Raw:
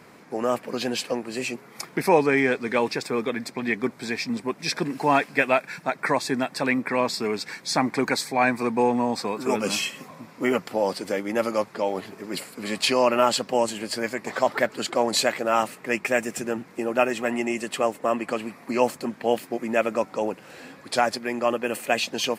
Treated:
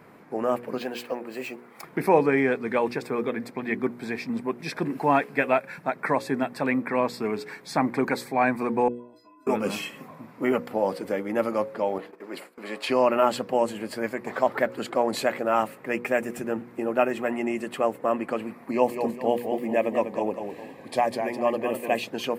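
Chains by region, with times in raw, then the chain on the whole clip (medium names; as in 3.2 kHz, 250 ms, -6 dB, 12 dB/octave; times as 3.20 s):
0.78–1.84 s: high-pass 400 Hz 6 dB/octave + companded quantiser 8-bit + decimation joined by straight lines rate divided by 2×
8.88–9.47 s: inharmonic resonator 300 Hz, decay 0.59 s, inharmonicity 0.03 + compression 5:1, threshold -48 dBFS
11.98–12.90 s: high-pass 370 Hz + treble shelf 8.1 kHz -8 dB + gate -45 dBFS, range -12 dB
18.71–22.04 s: Butterworth band-stop 1.4 kHz, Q 3 + modulated delay 202 ms, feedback 34%, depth 121 cents, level -7 dB
whole clip: peaking EQ 5.9 kHz -13 dB 2 oct; de-hum 60.33 Hz, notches 9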